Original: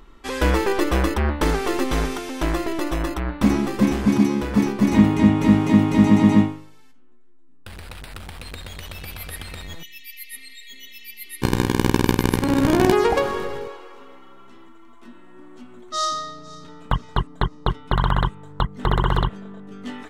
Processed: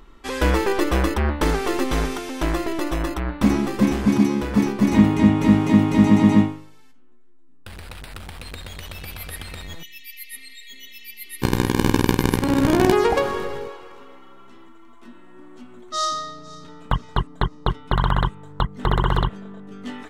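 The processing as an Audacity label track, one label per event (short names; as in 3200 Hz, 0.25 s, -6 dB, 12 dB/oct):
10.980000	11.660000	echo throw 0.34 s, feedback 55%, level -8 dB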